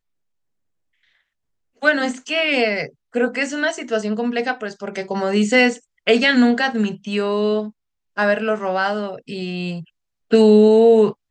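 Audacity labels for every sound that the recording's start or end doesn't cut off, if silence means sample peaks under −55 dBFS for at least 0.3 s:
1.030000	1.210000	sound
1.760000	7.720000	sound
8.160000	9.900000	sound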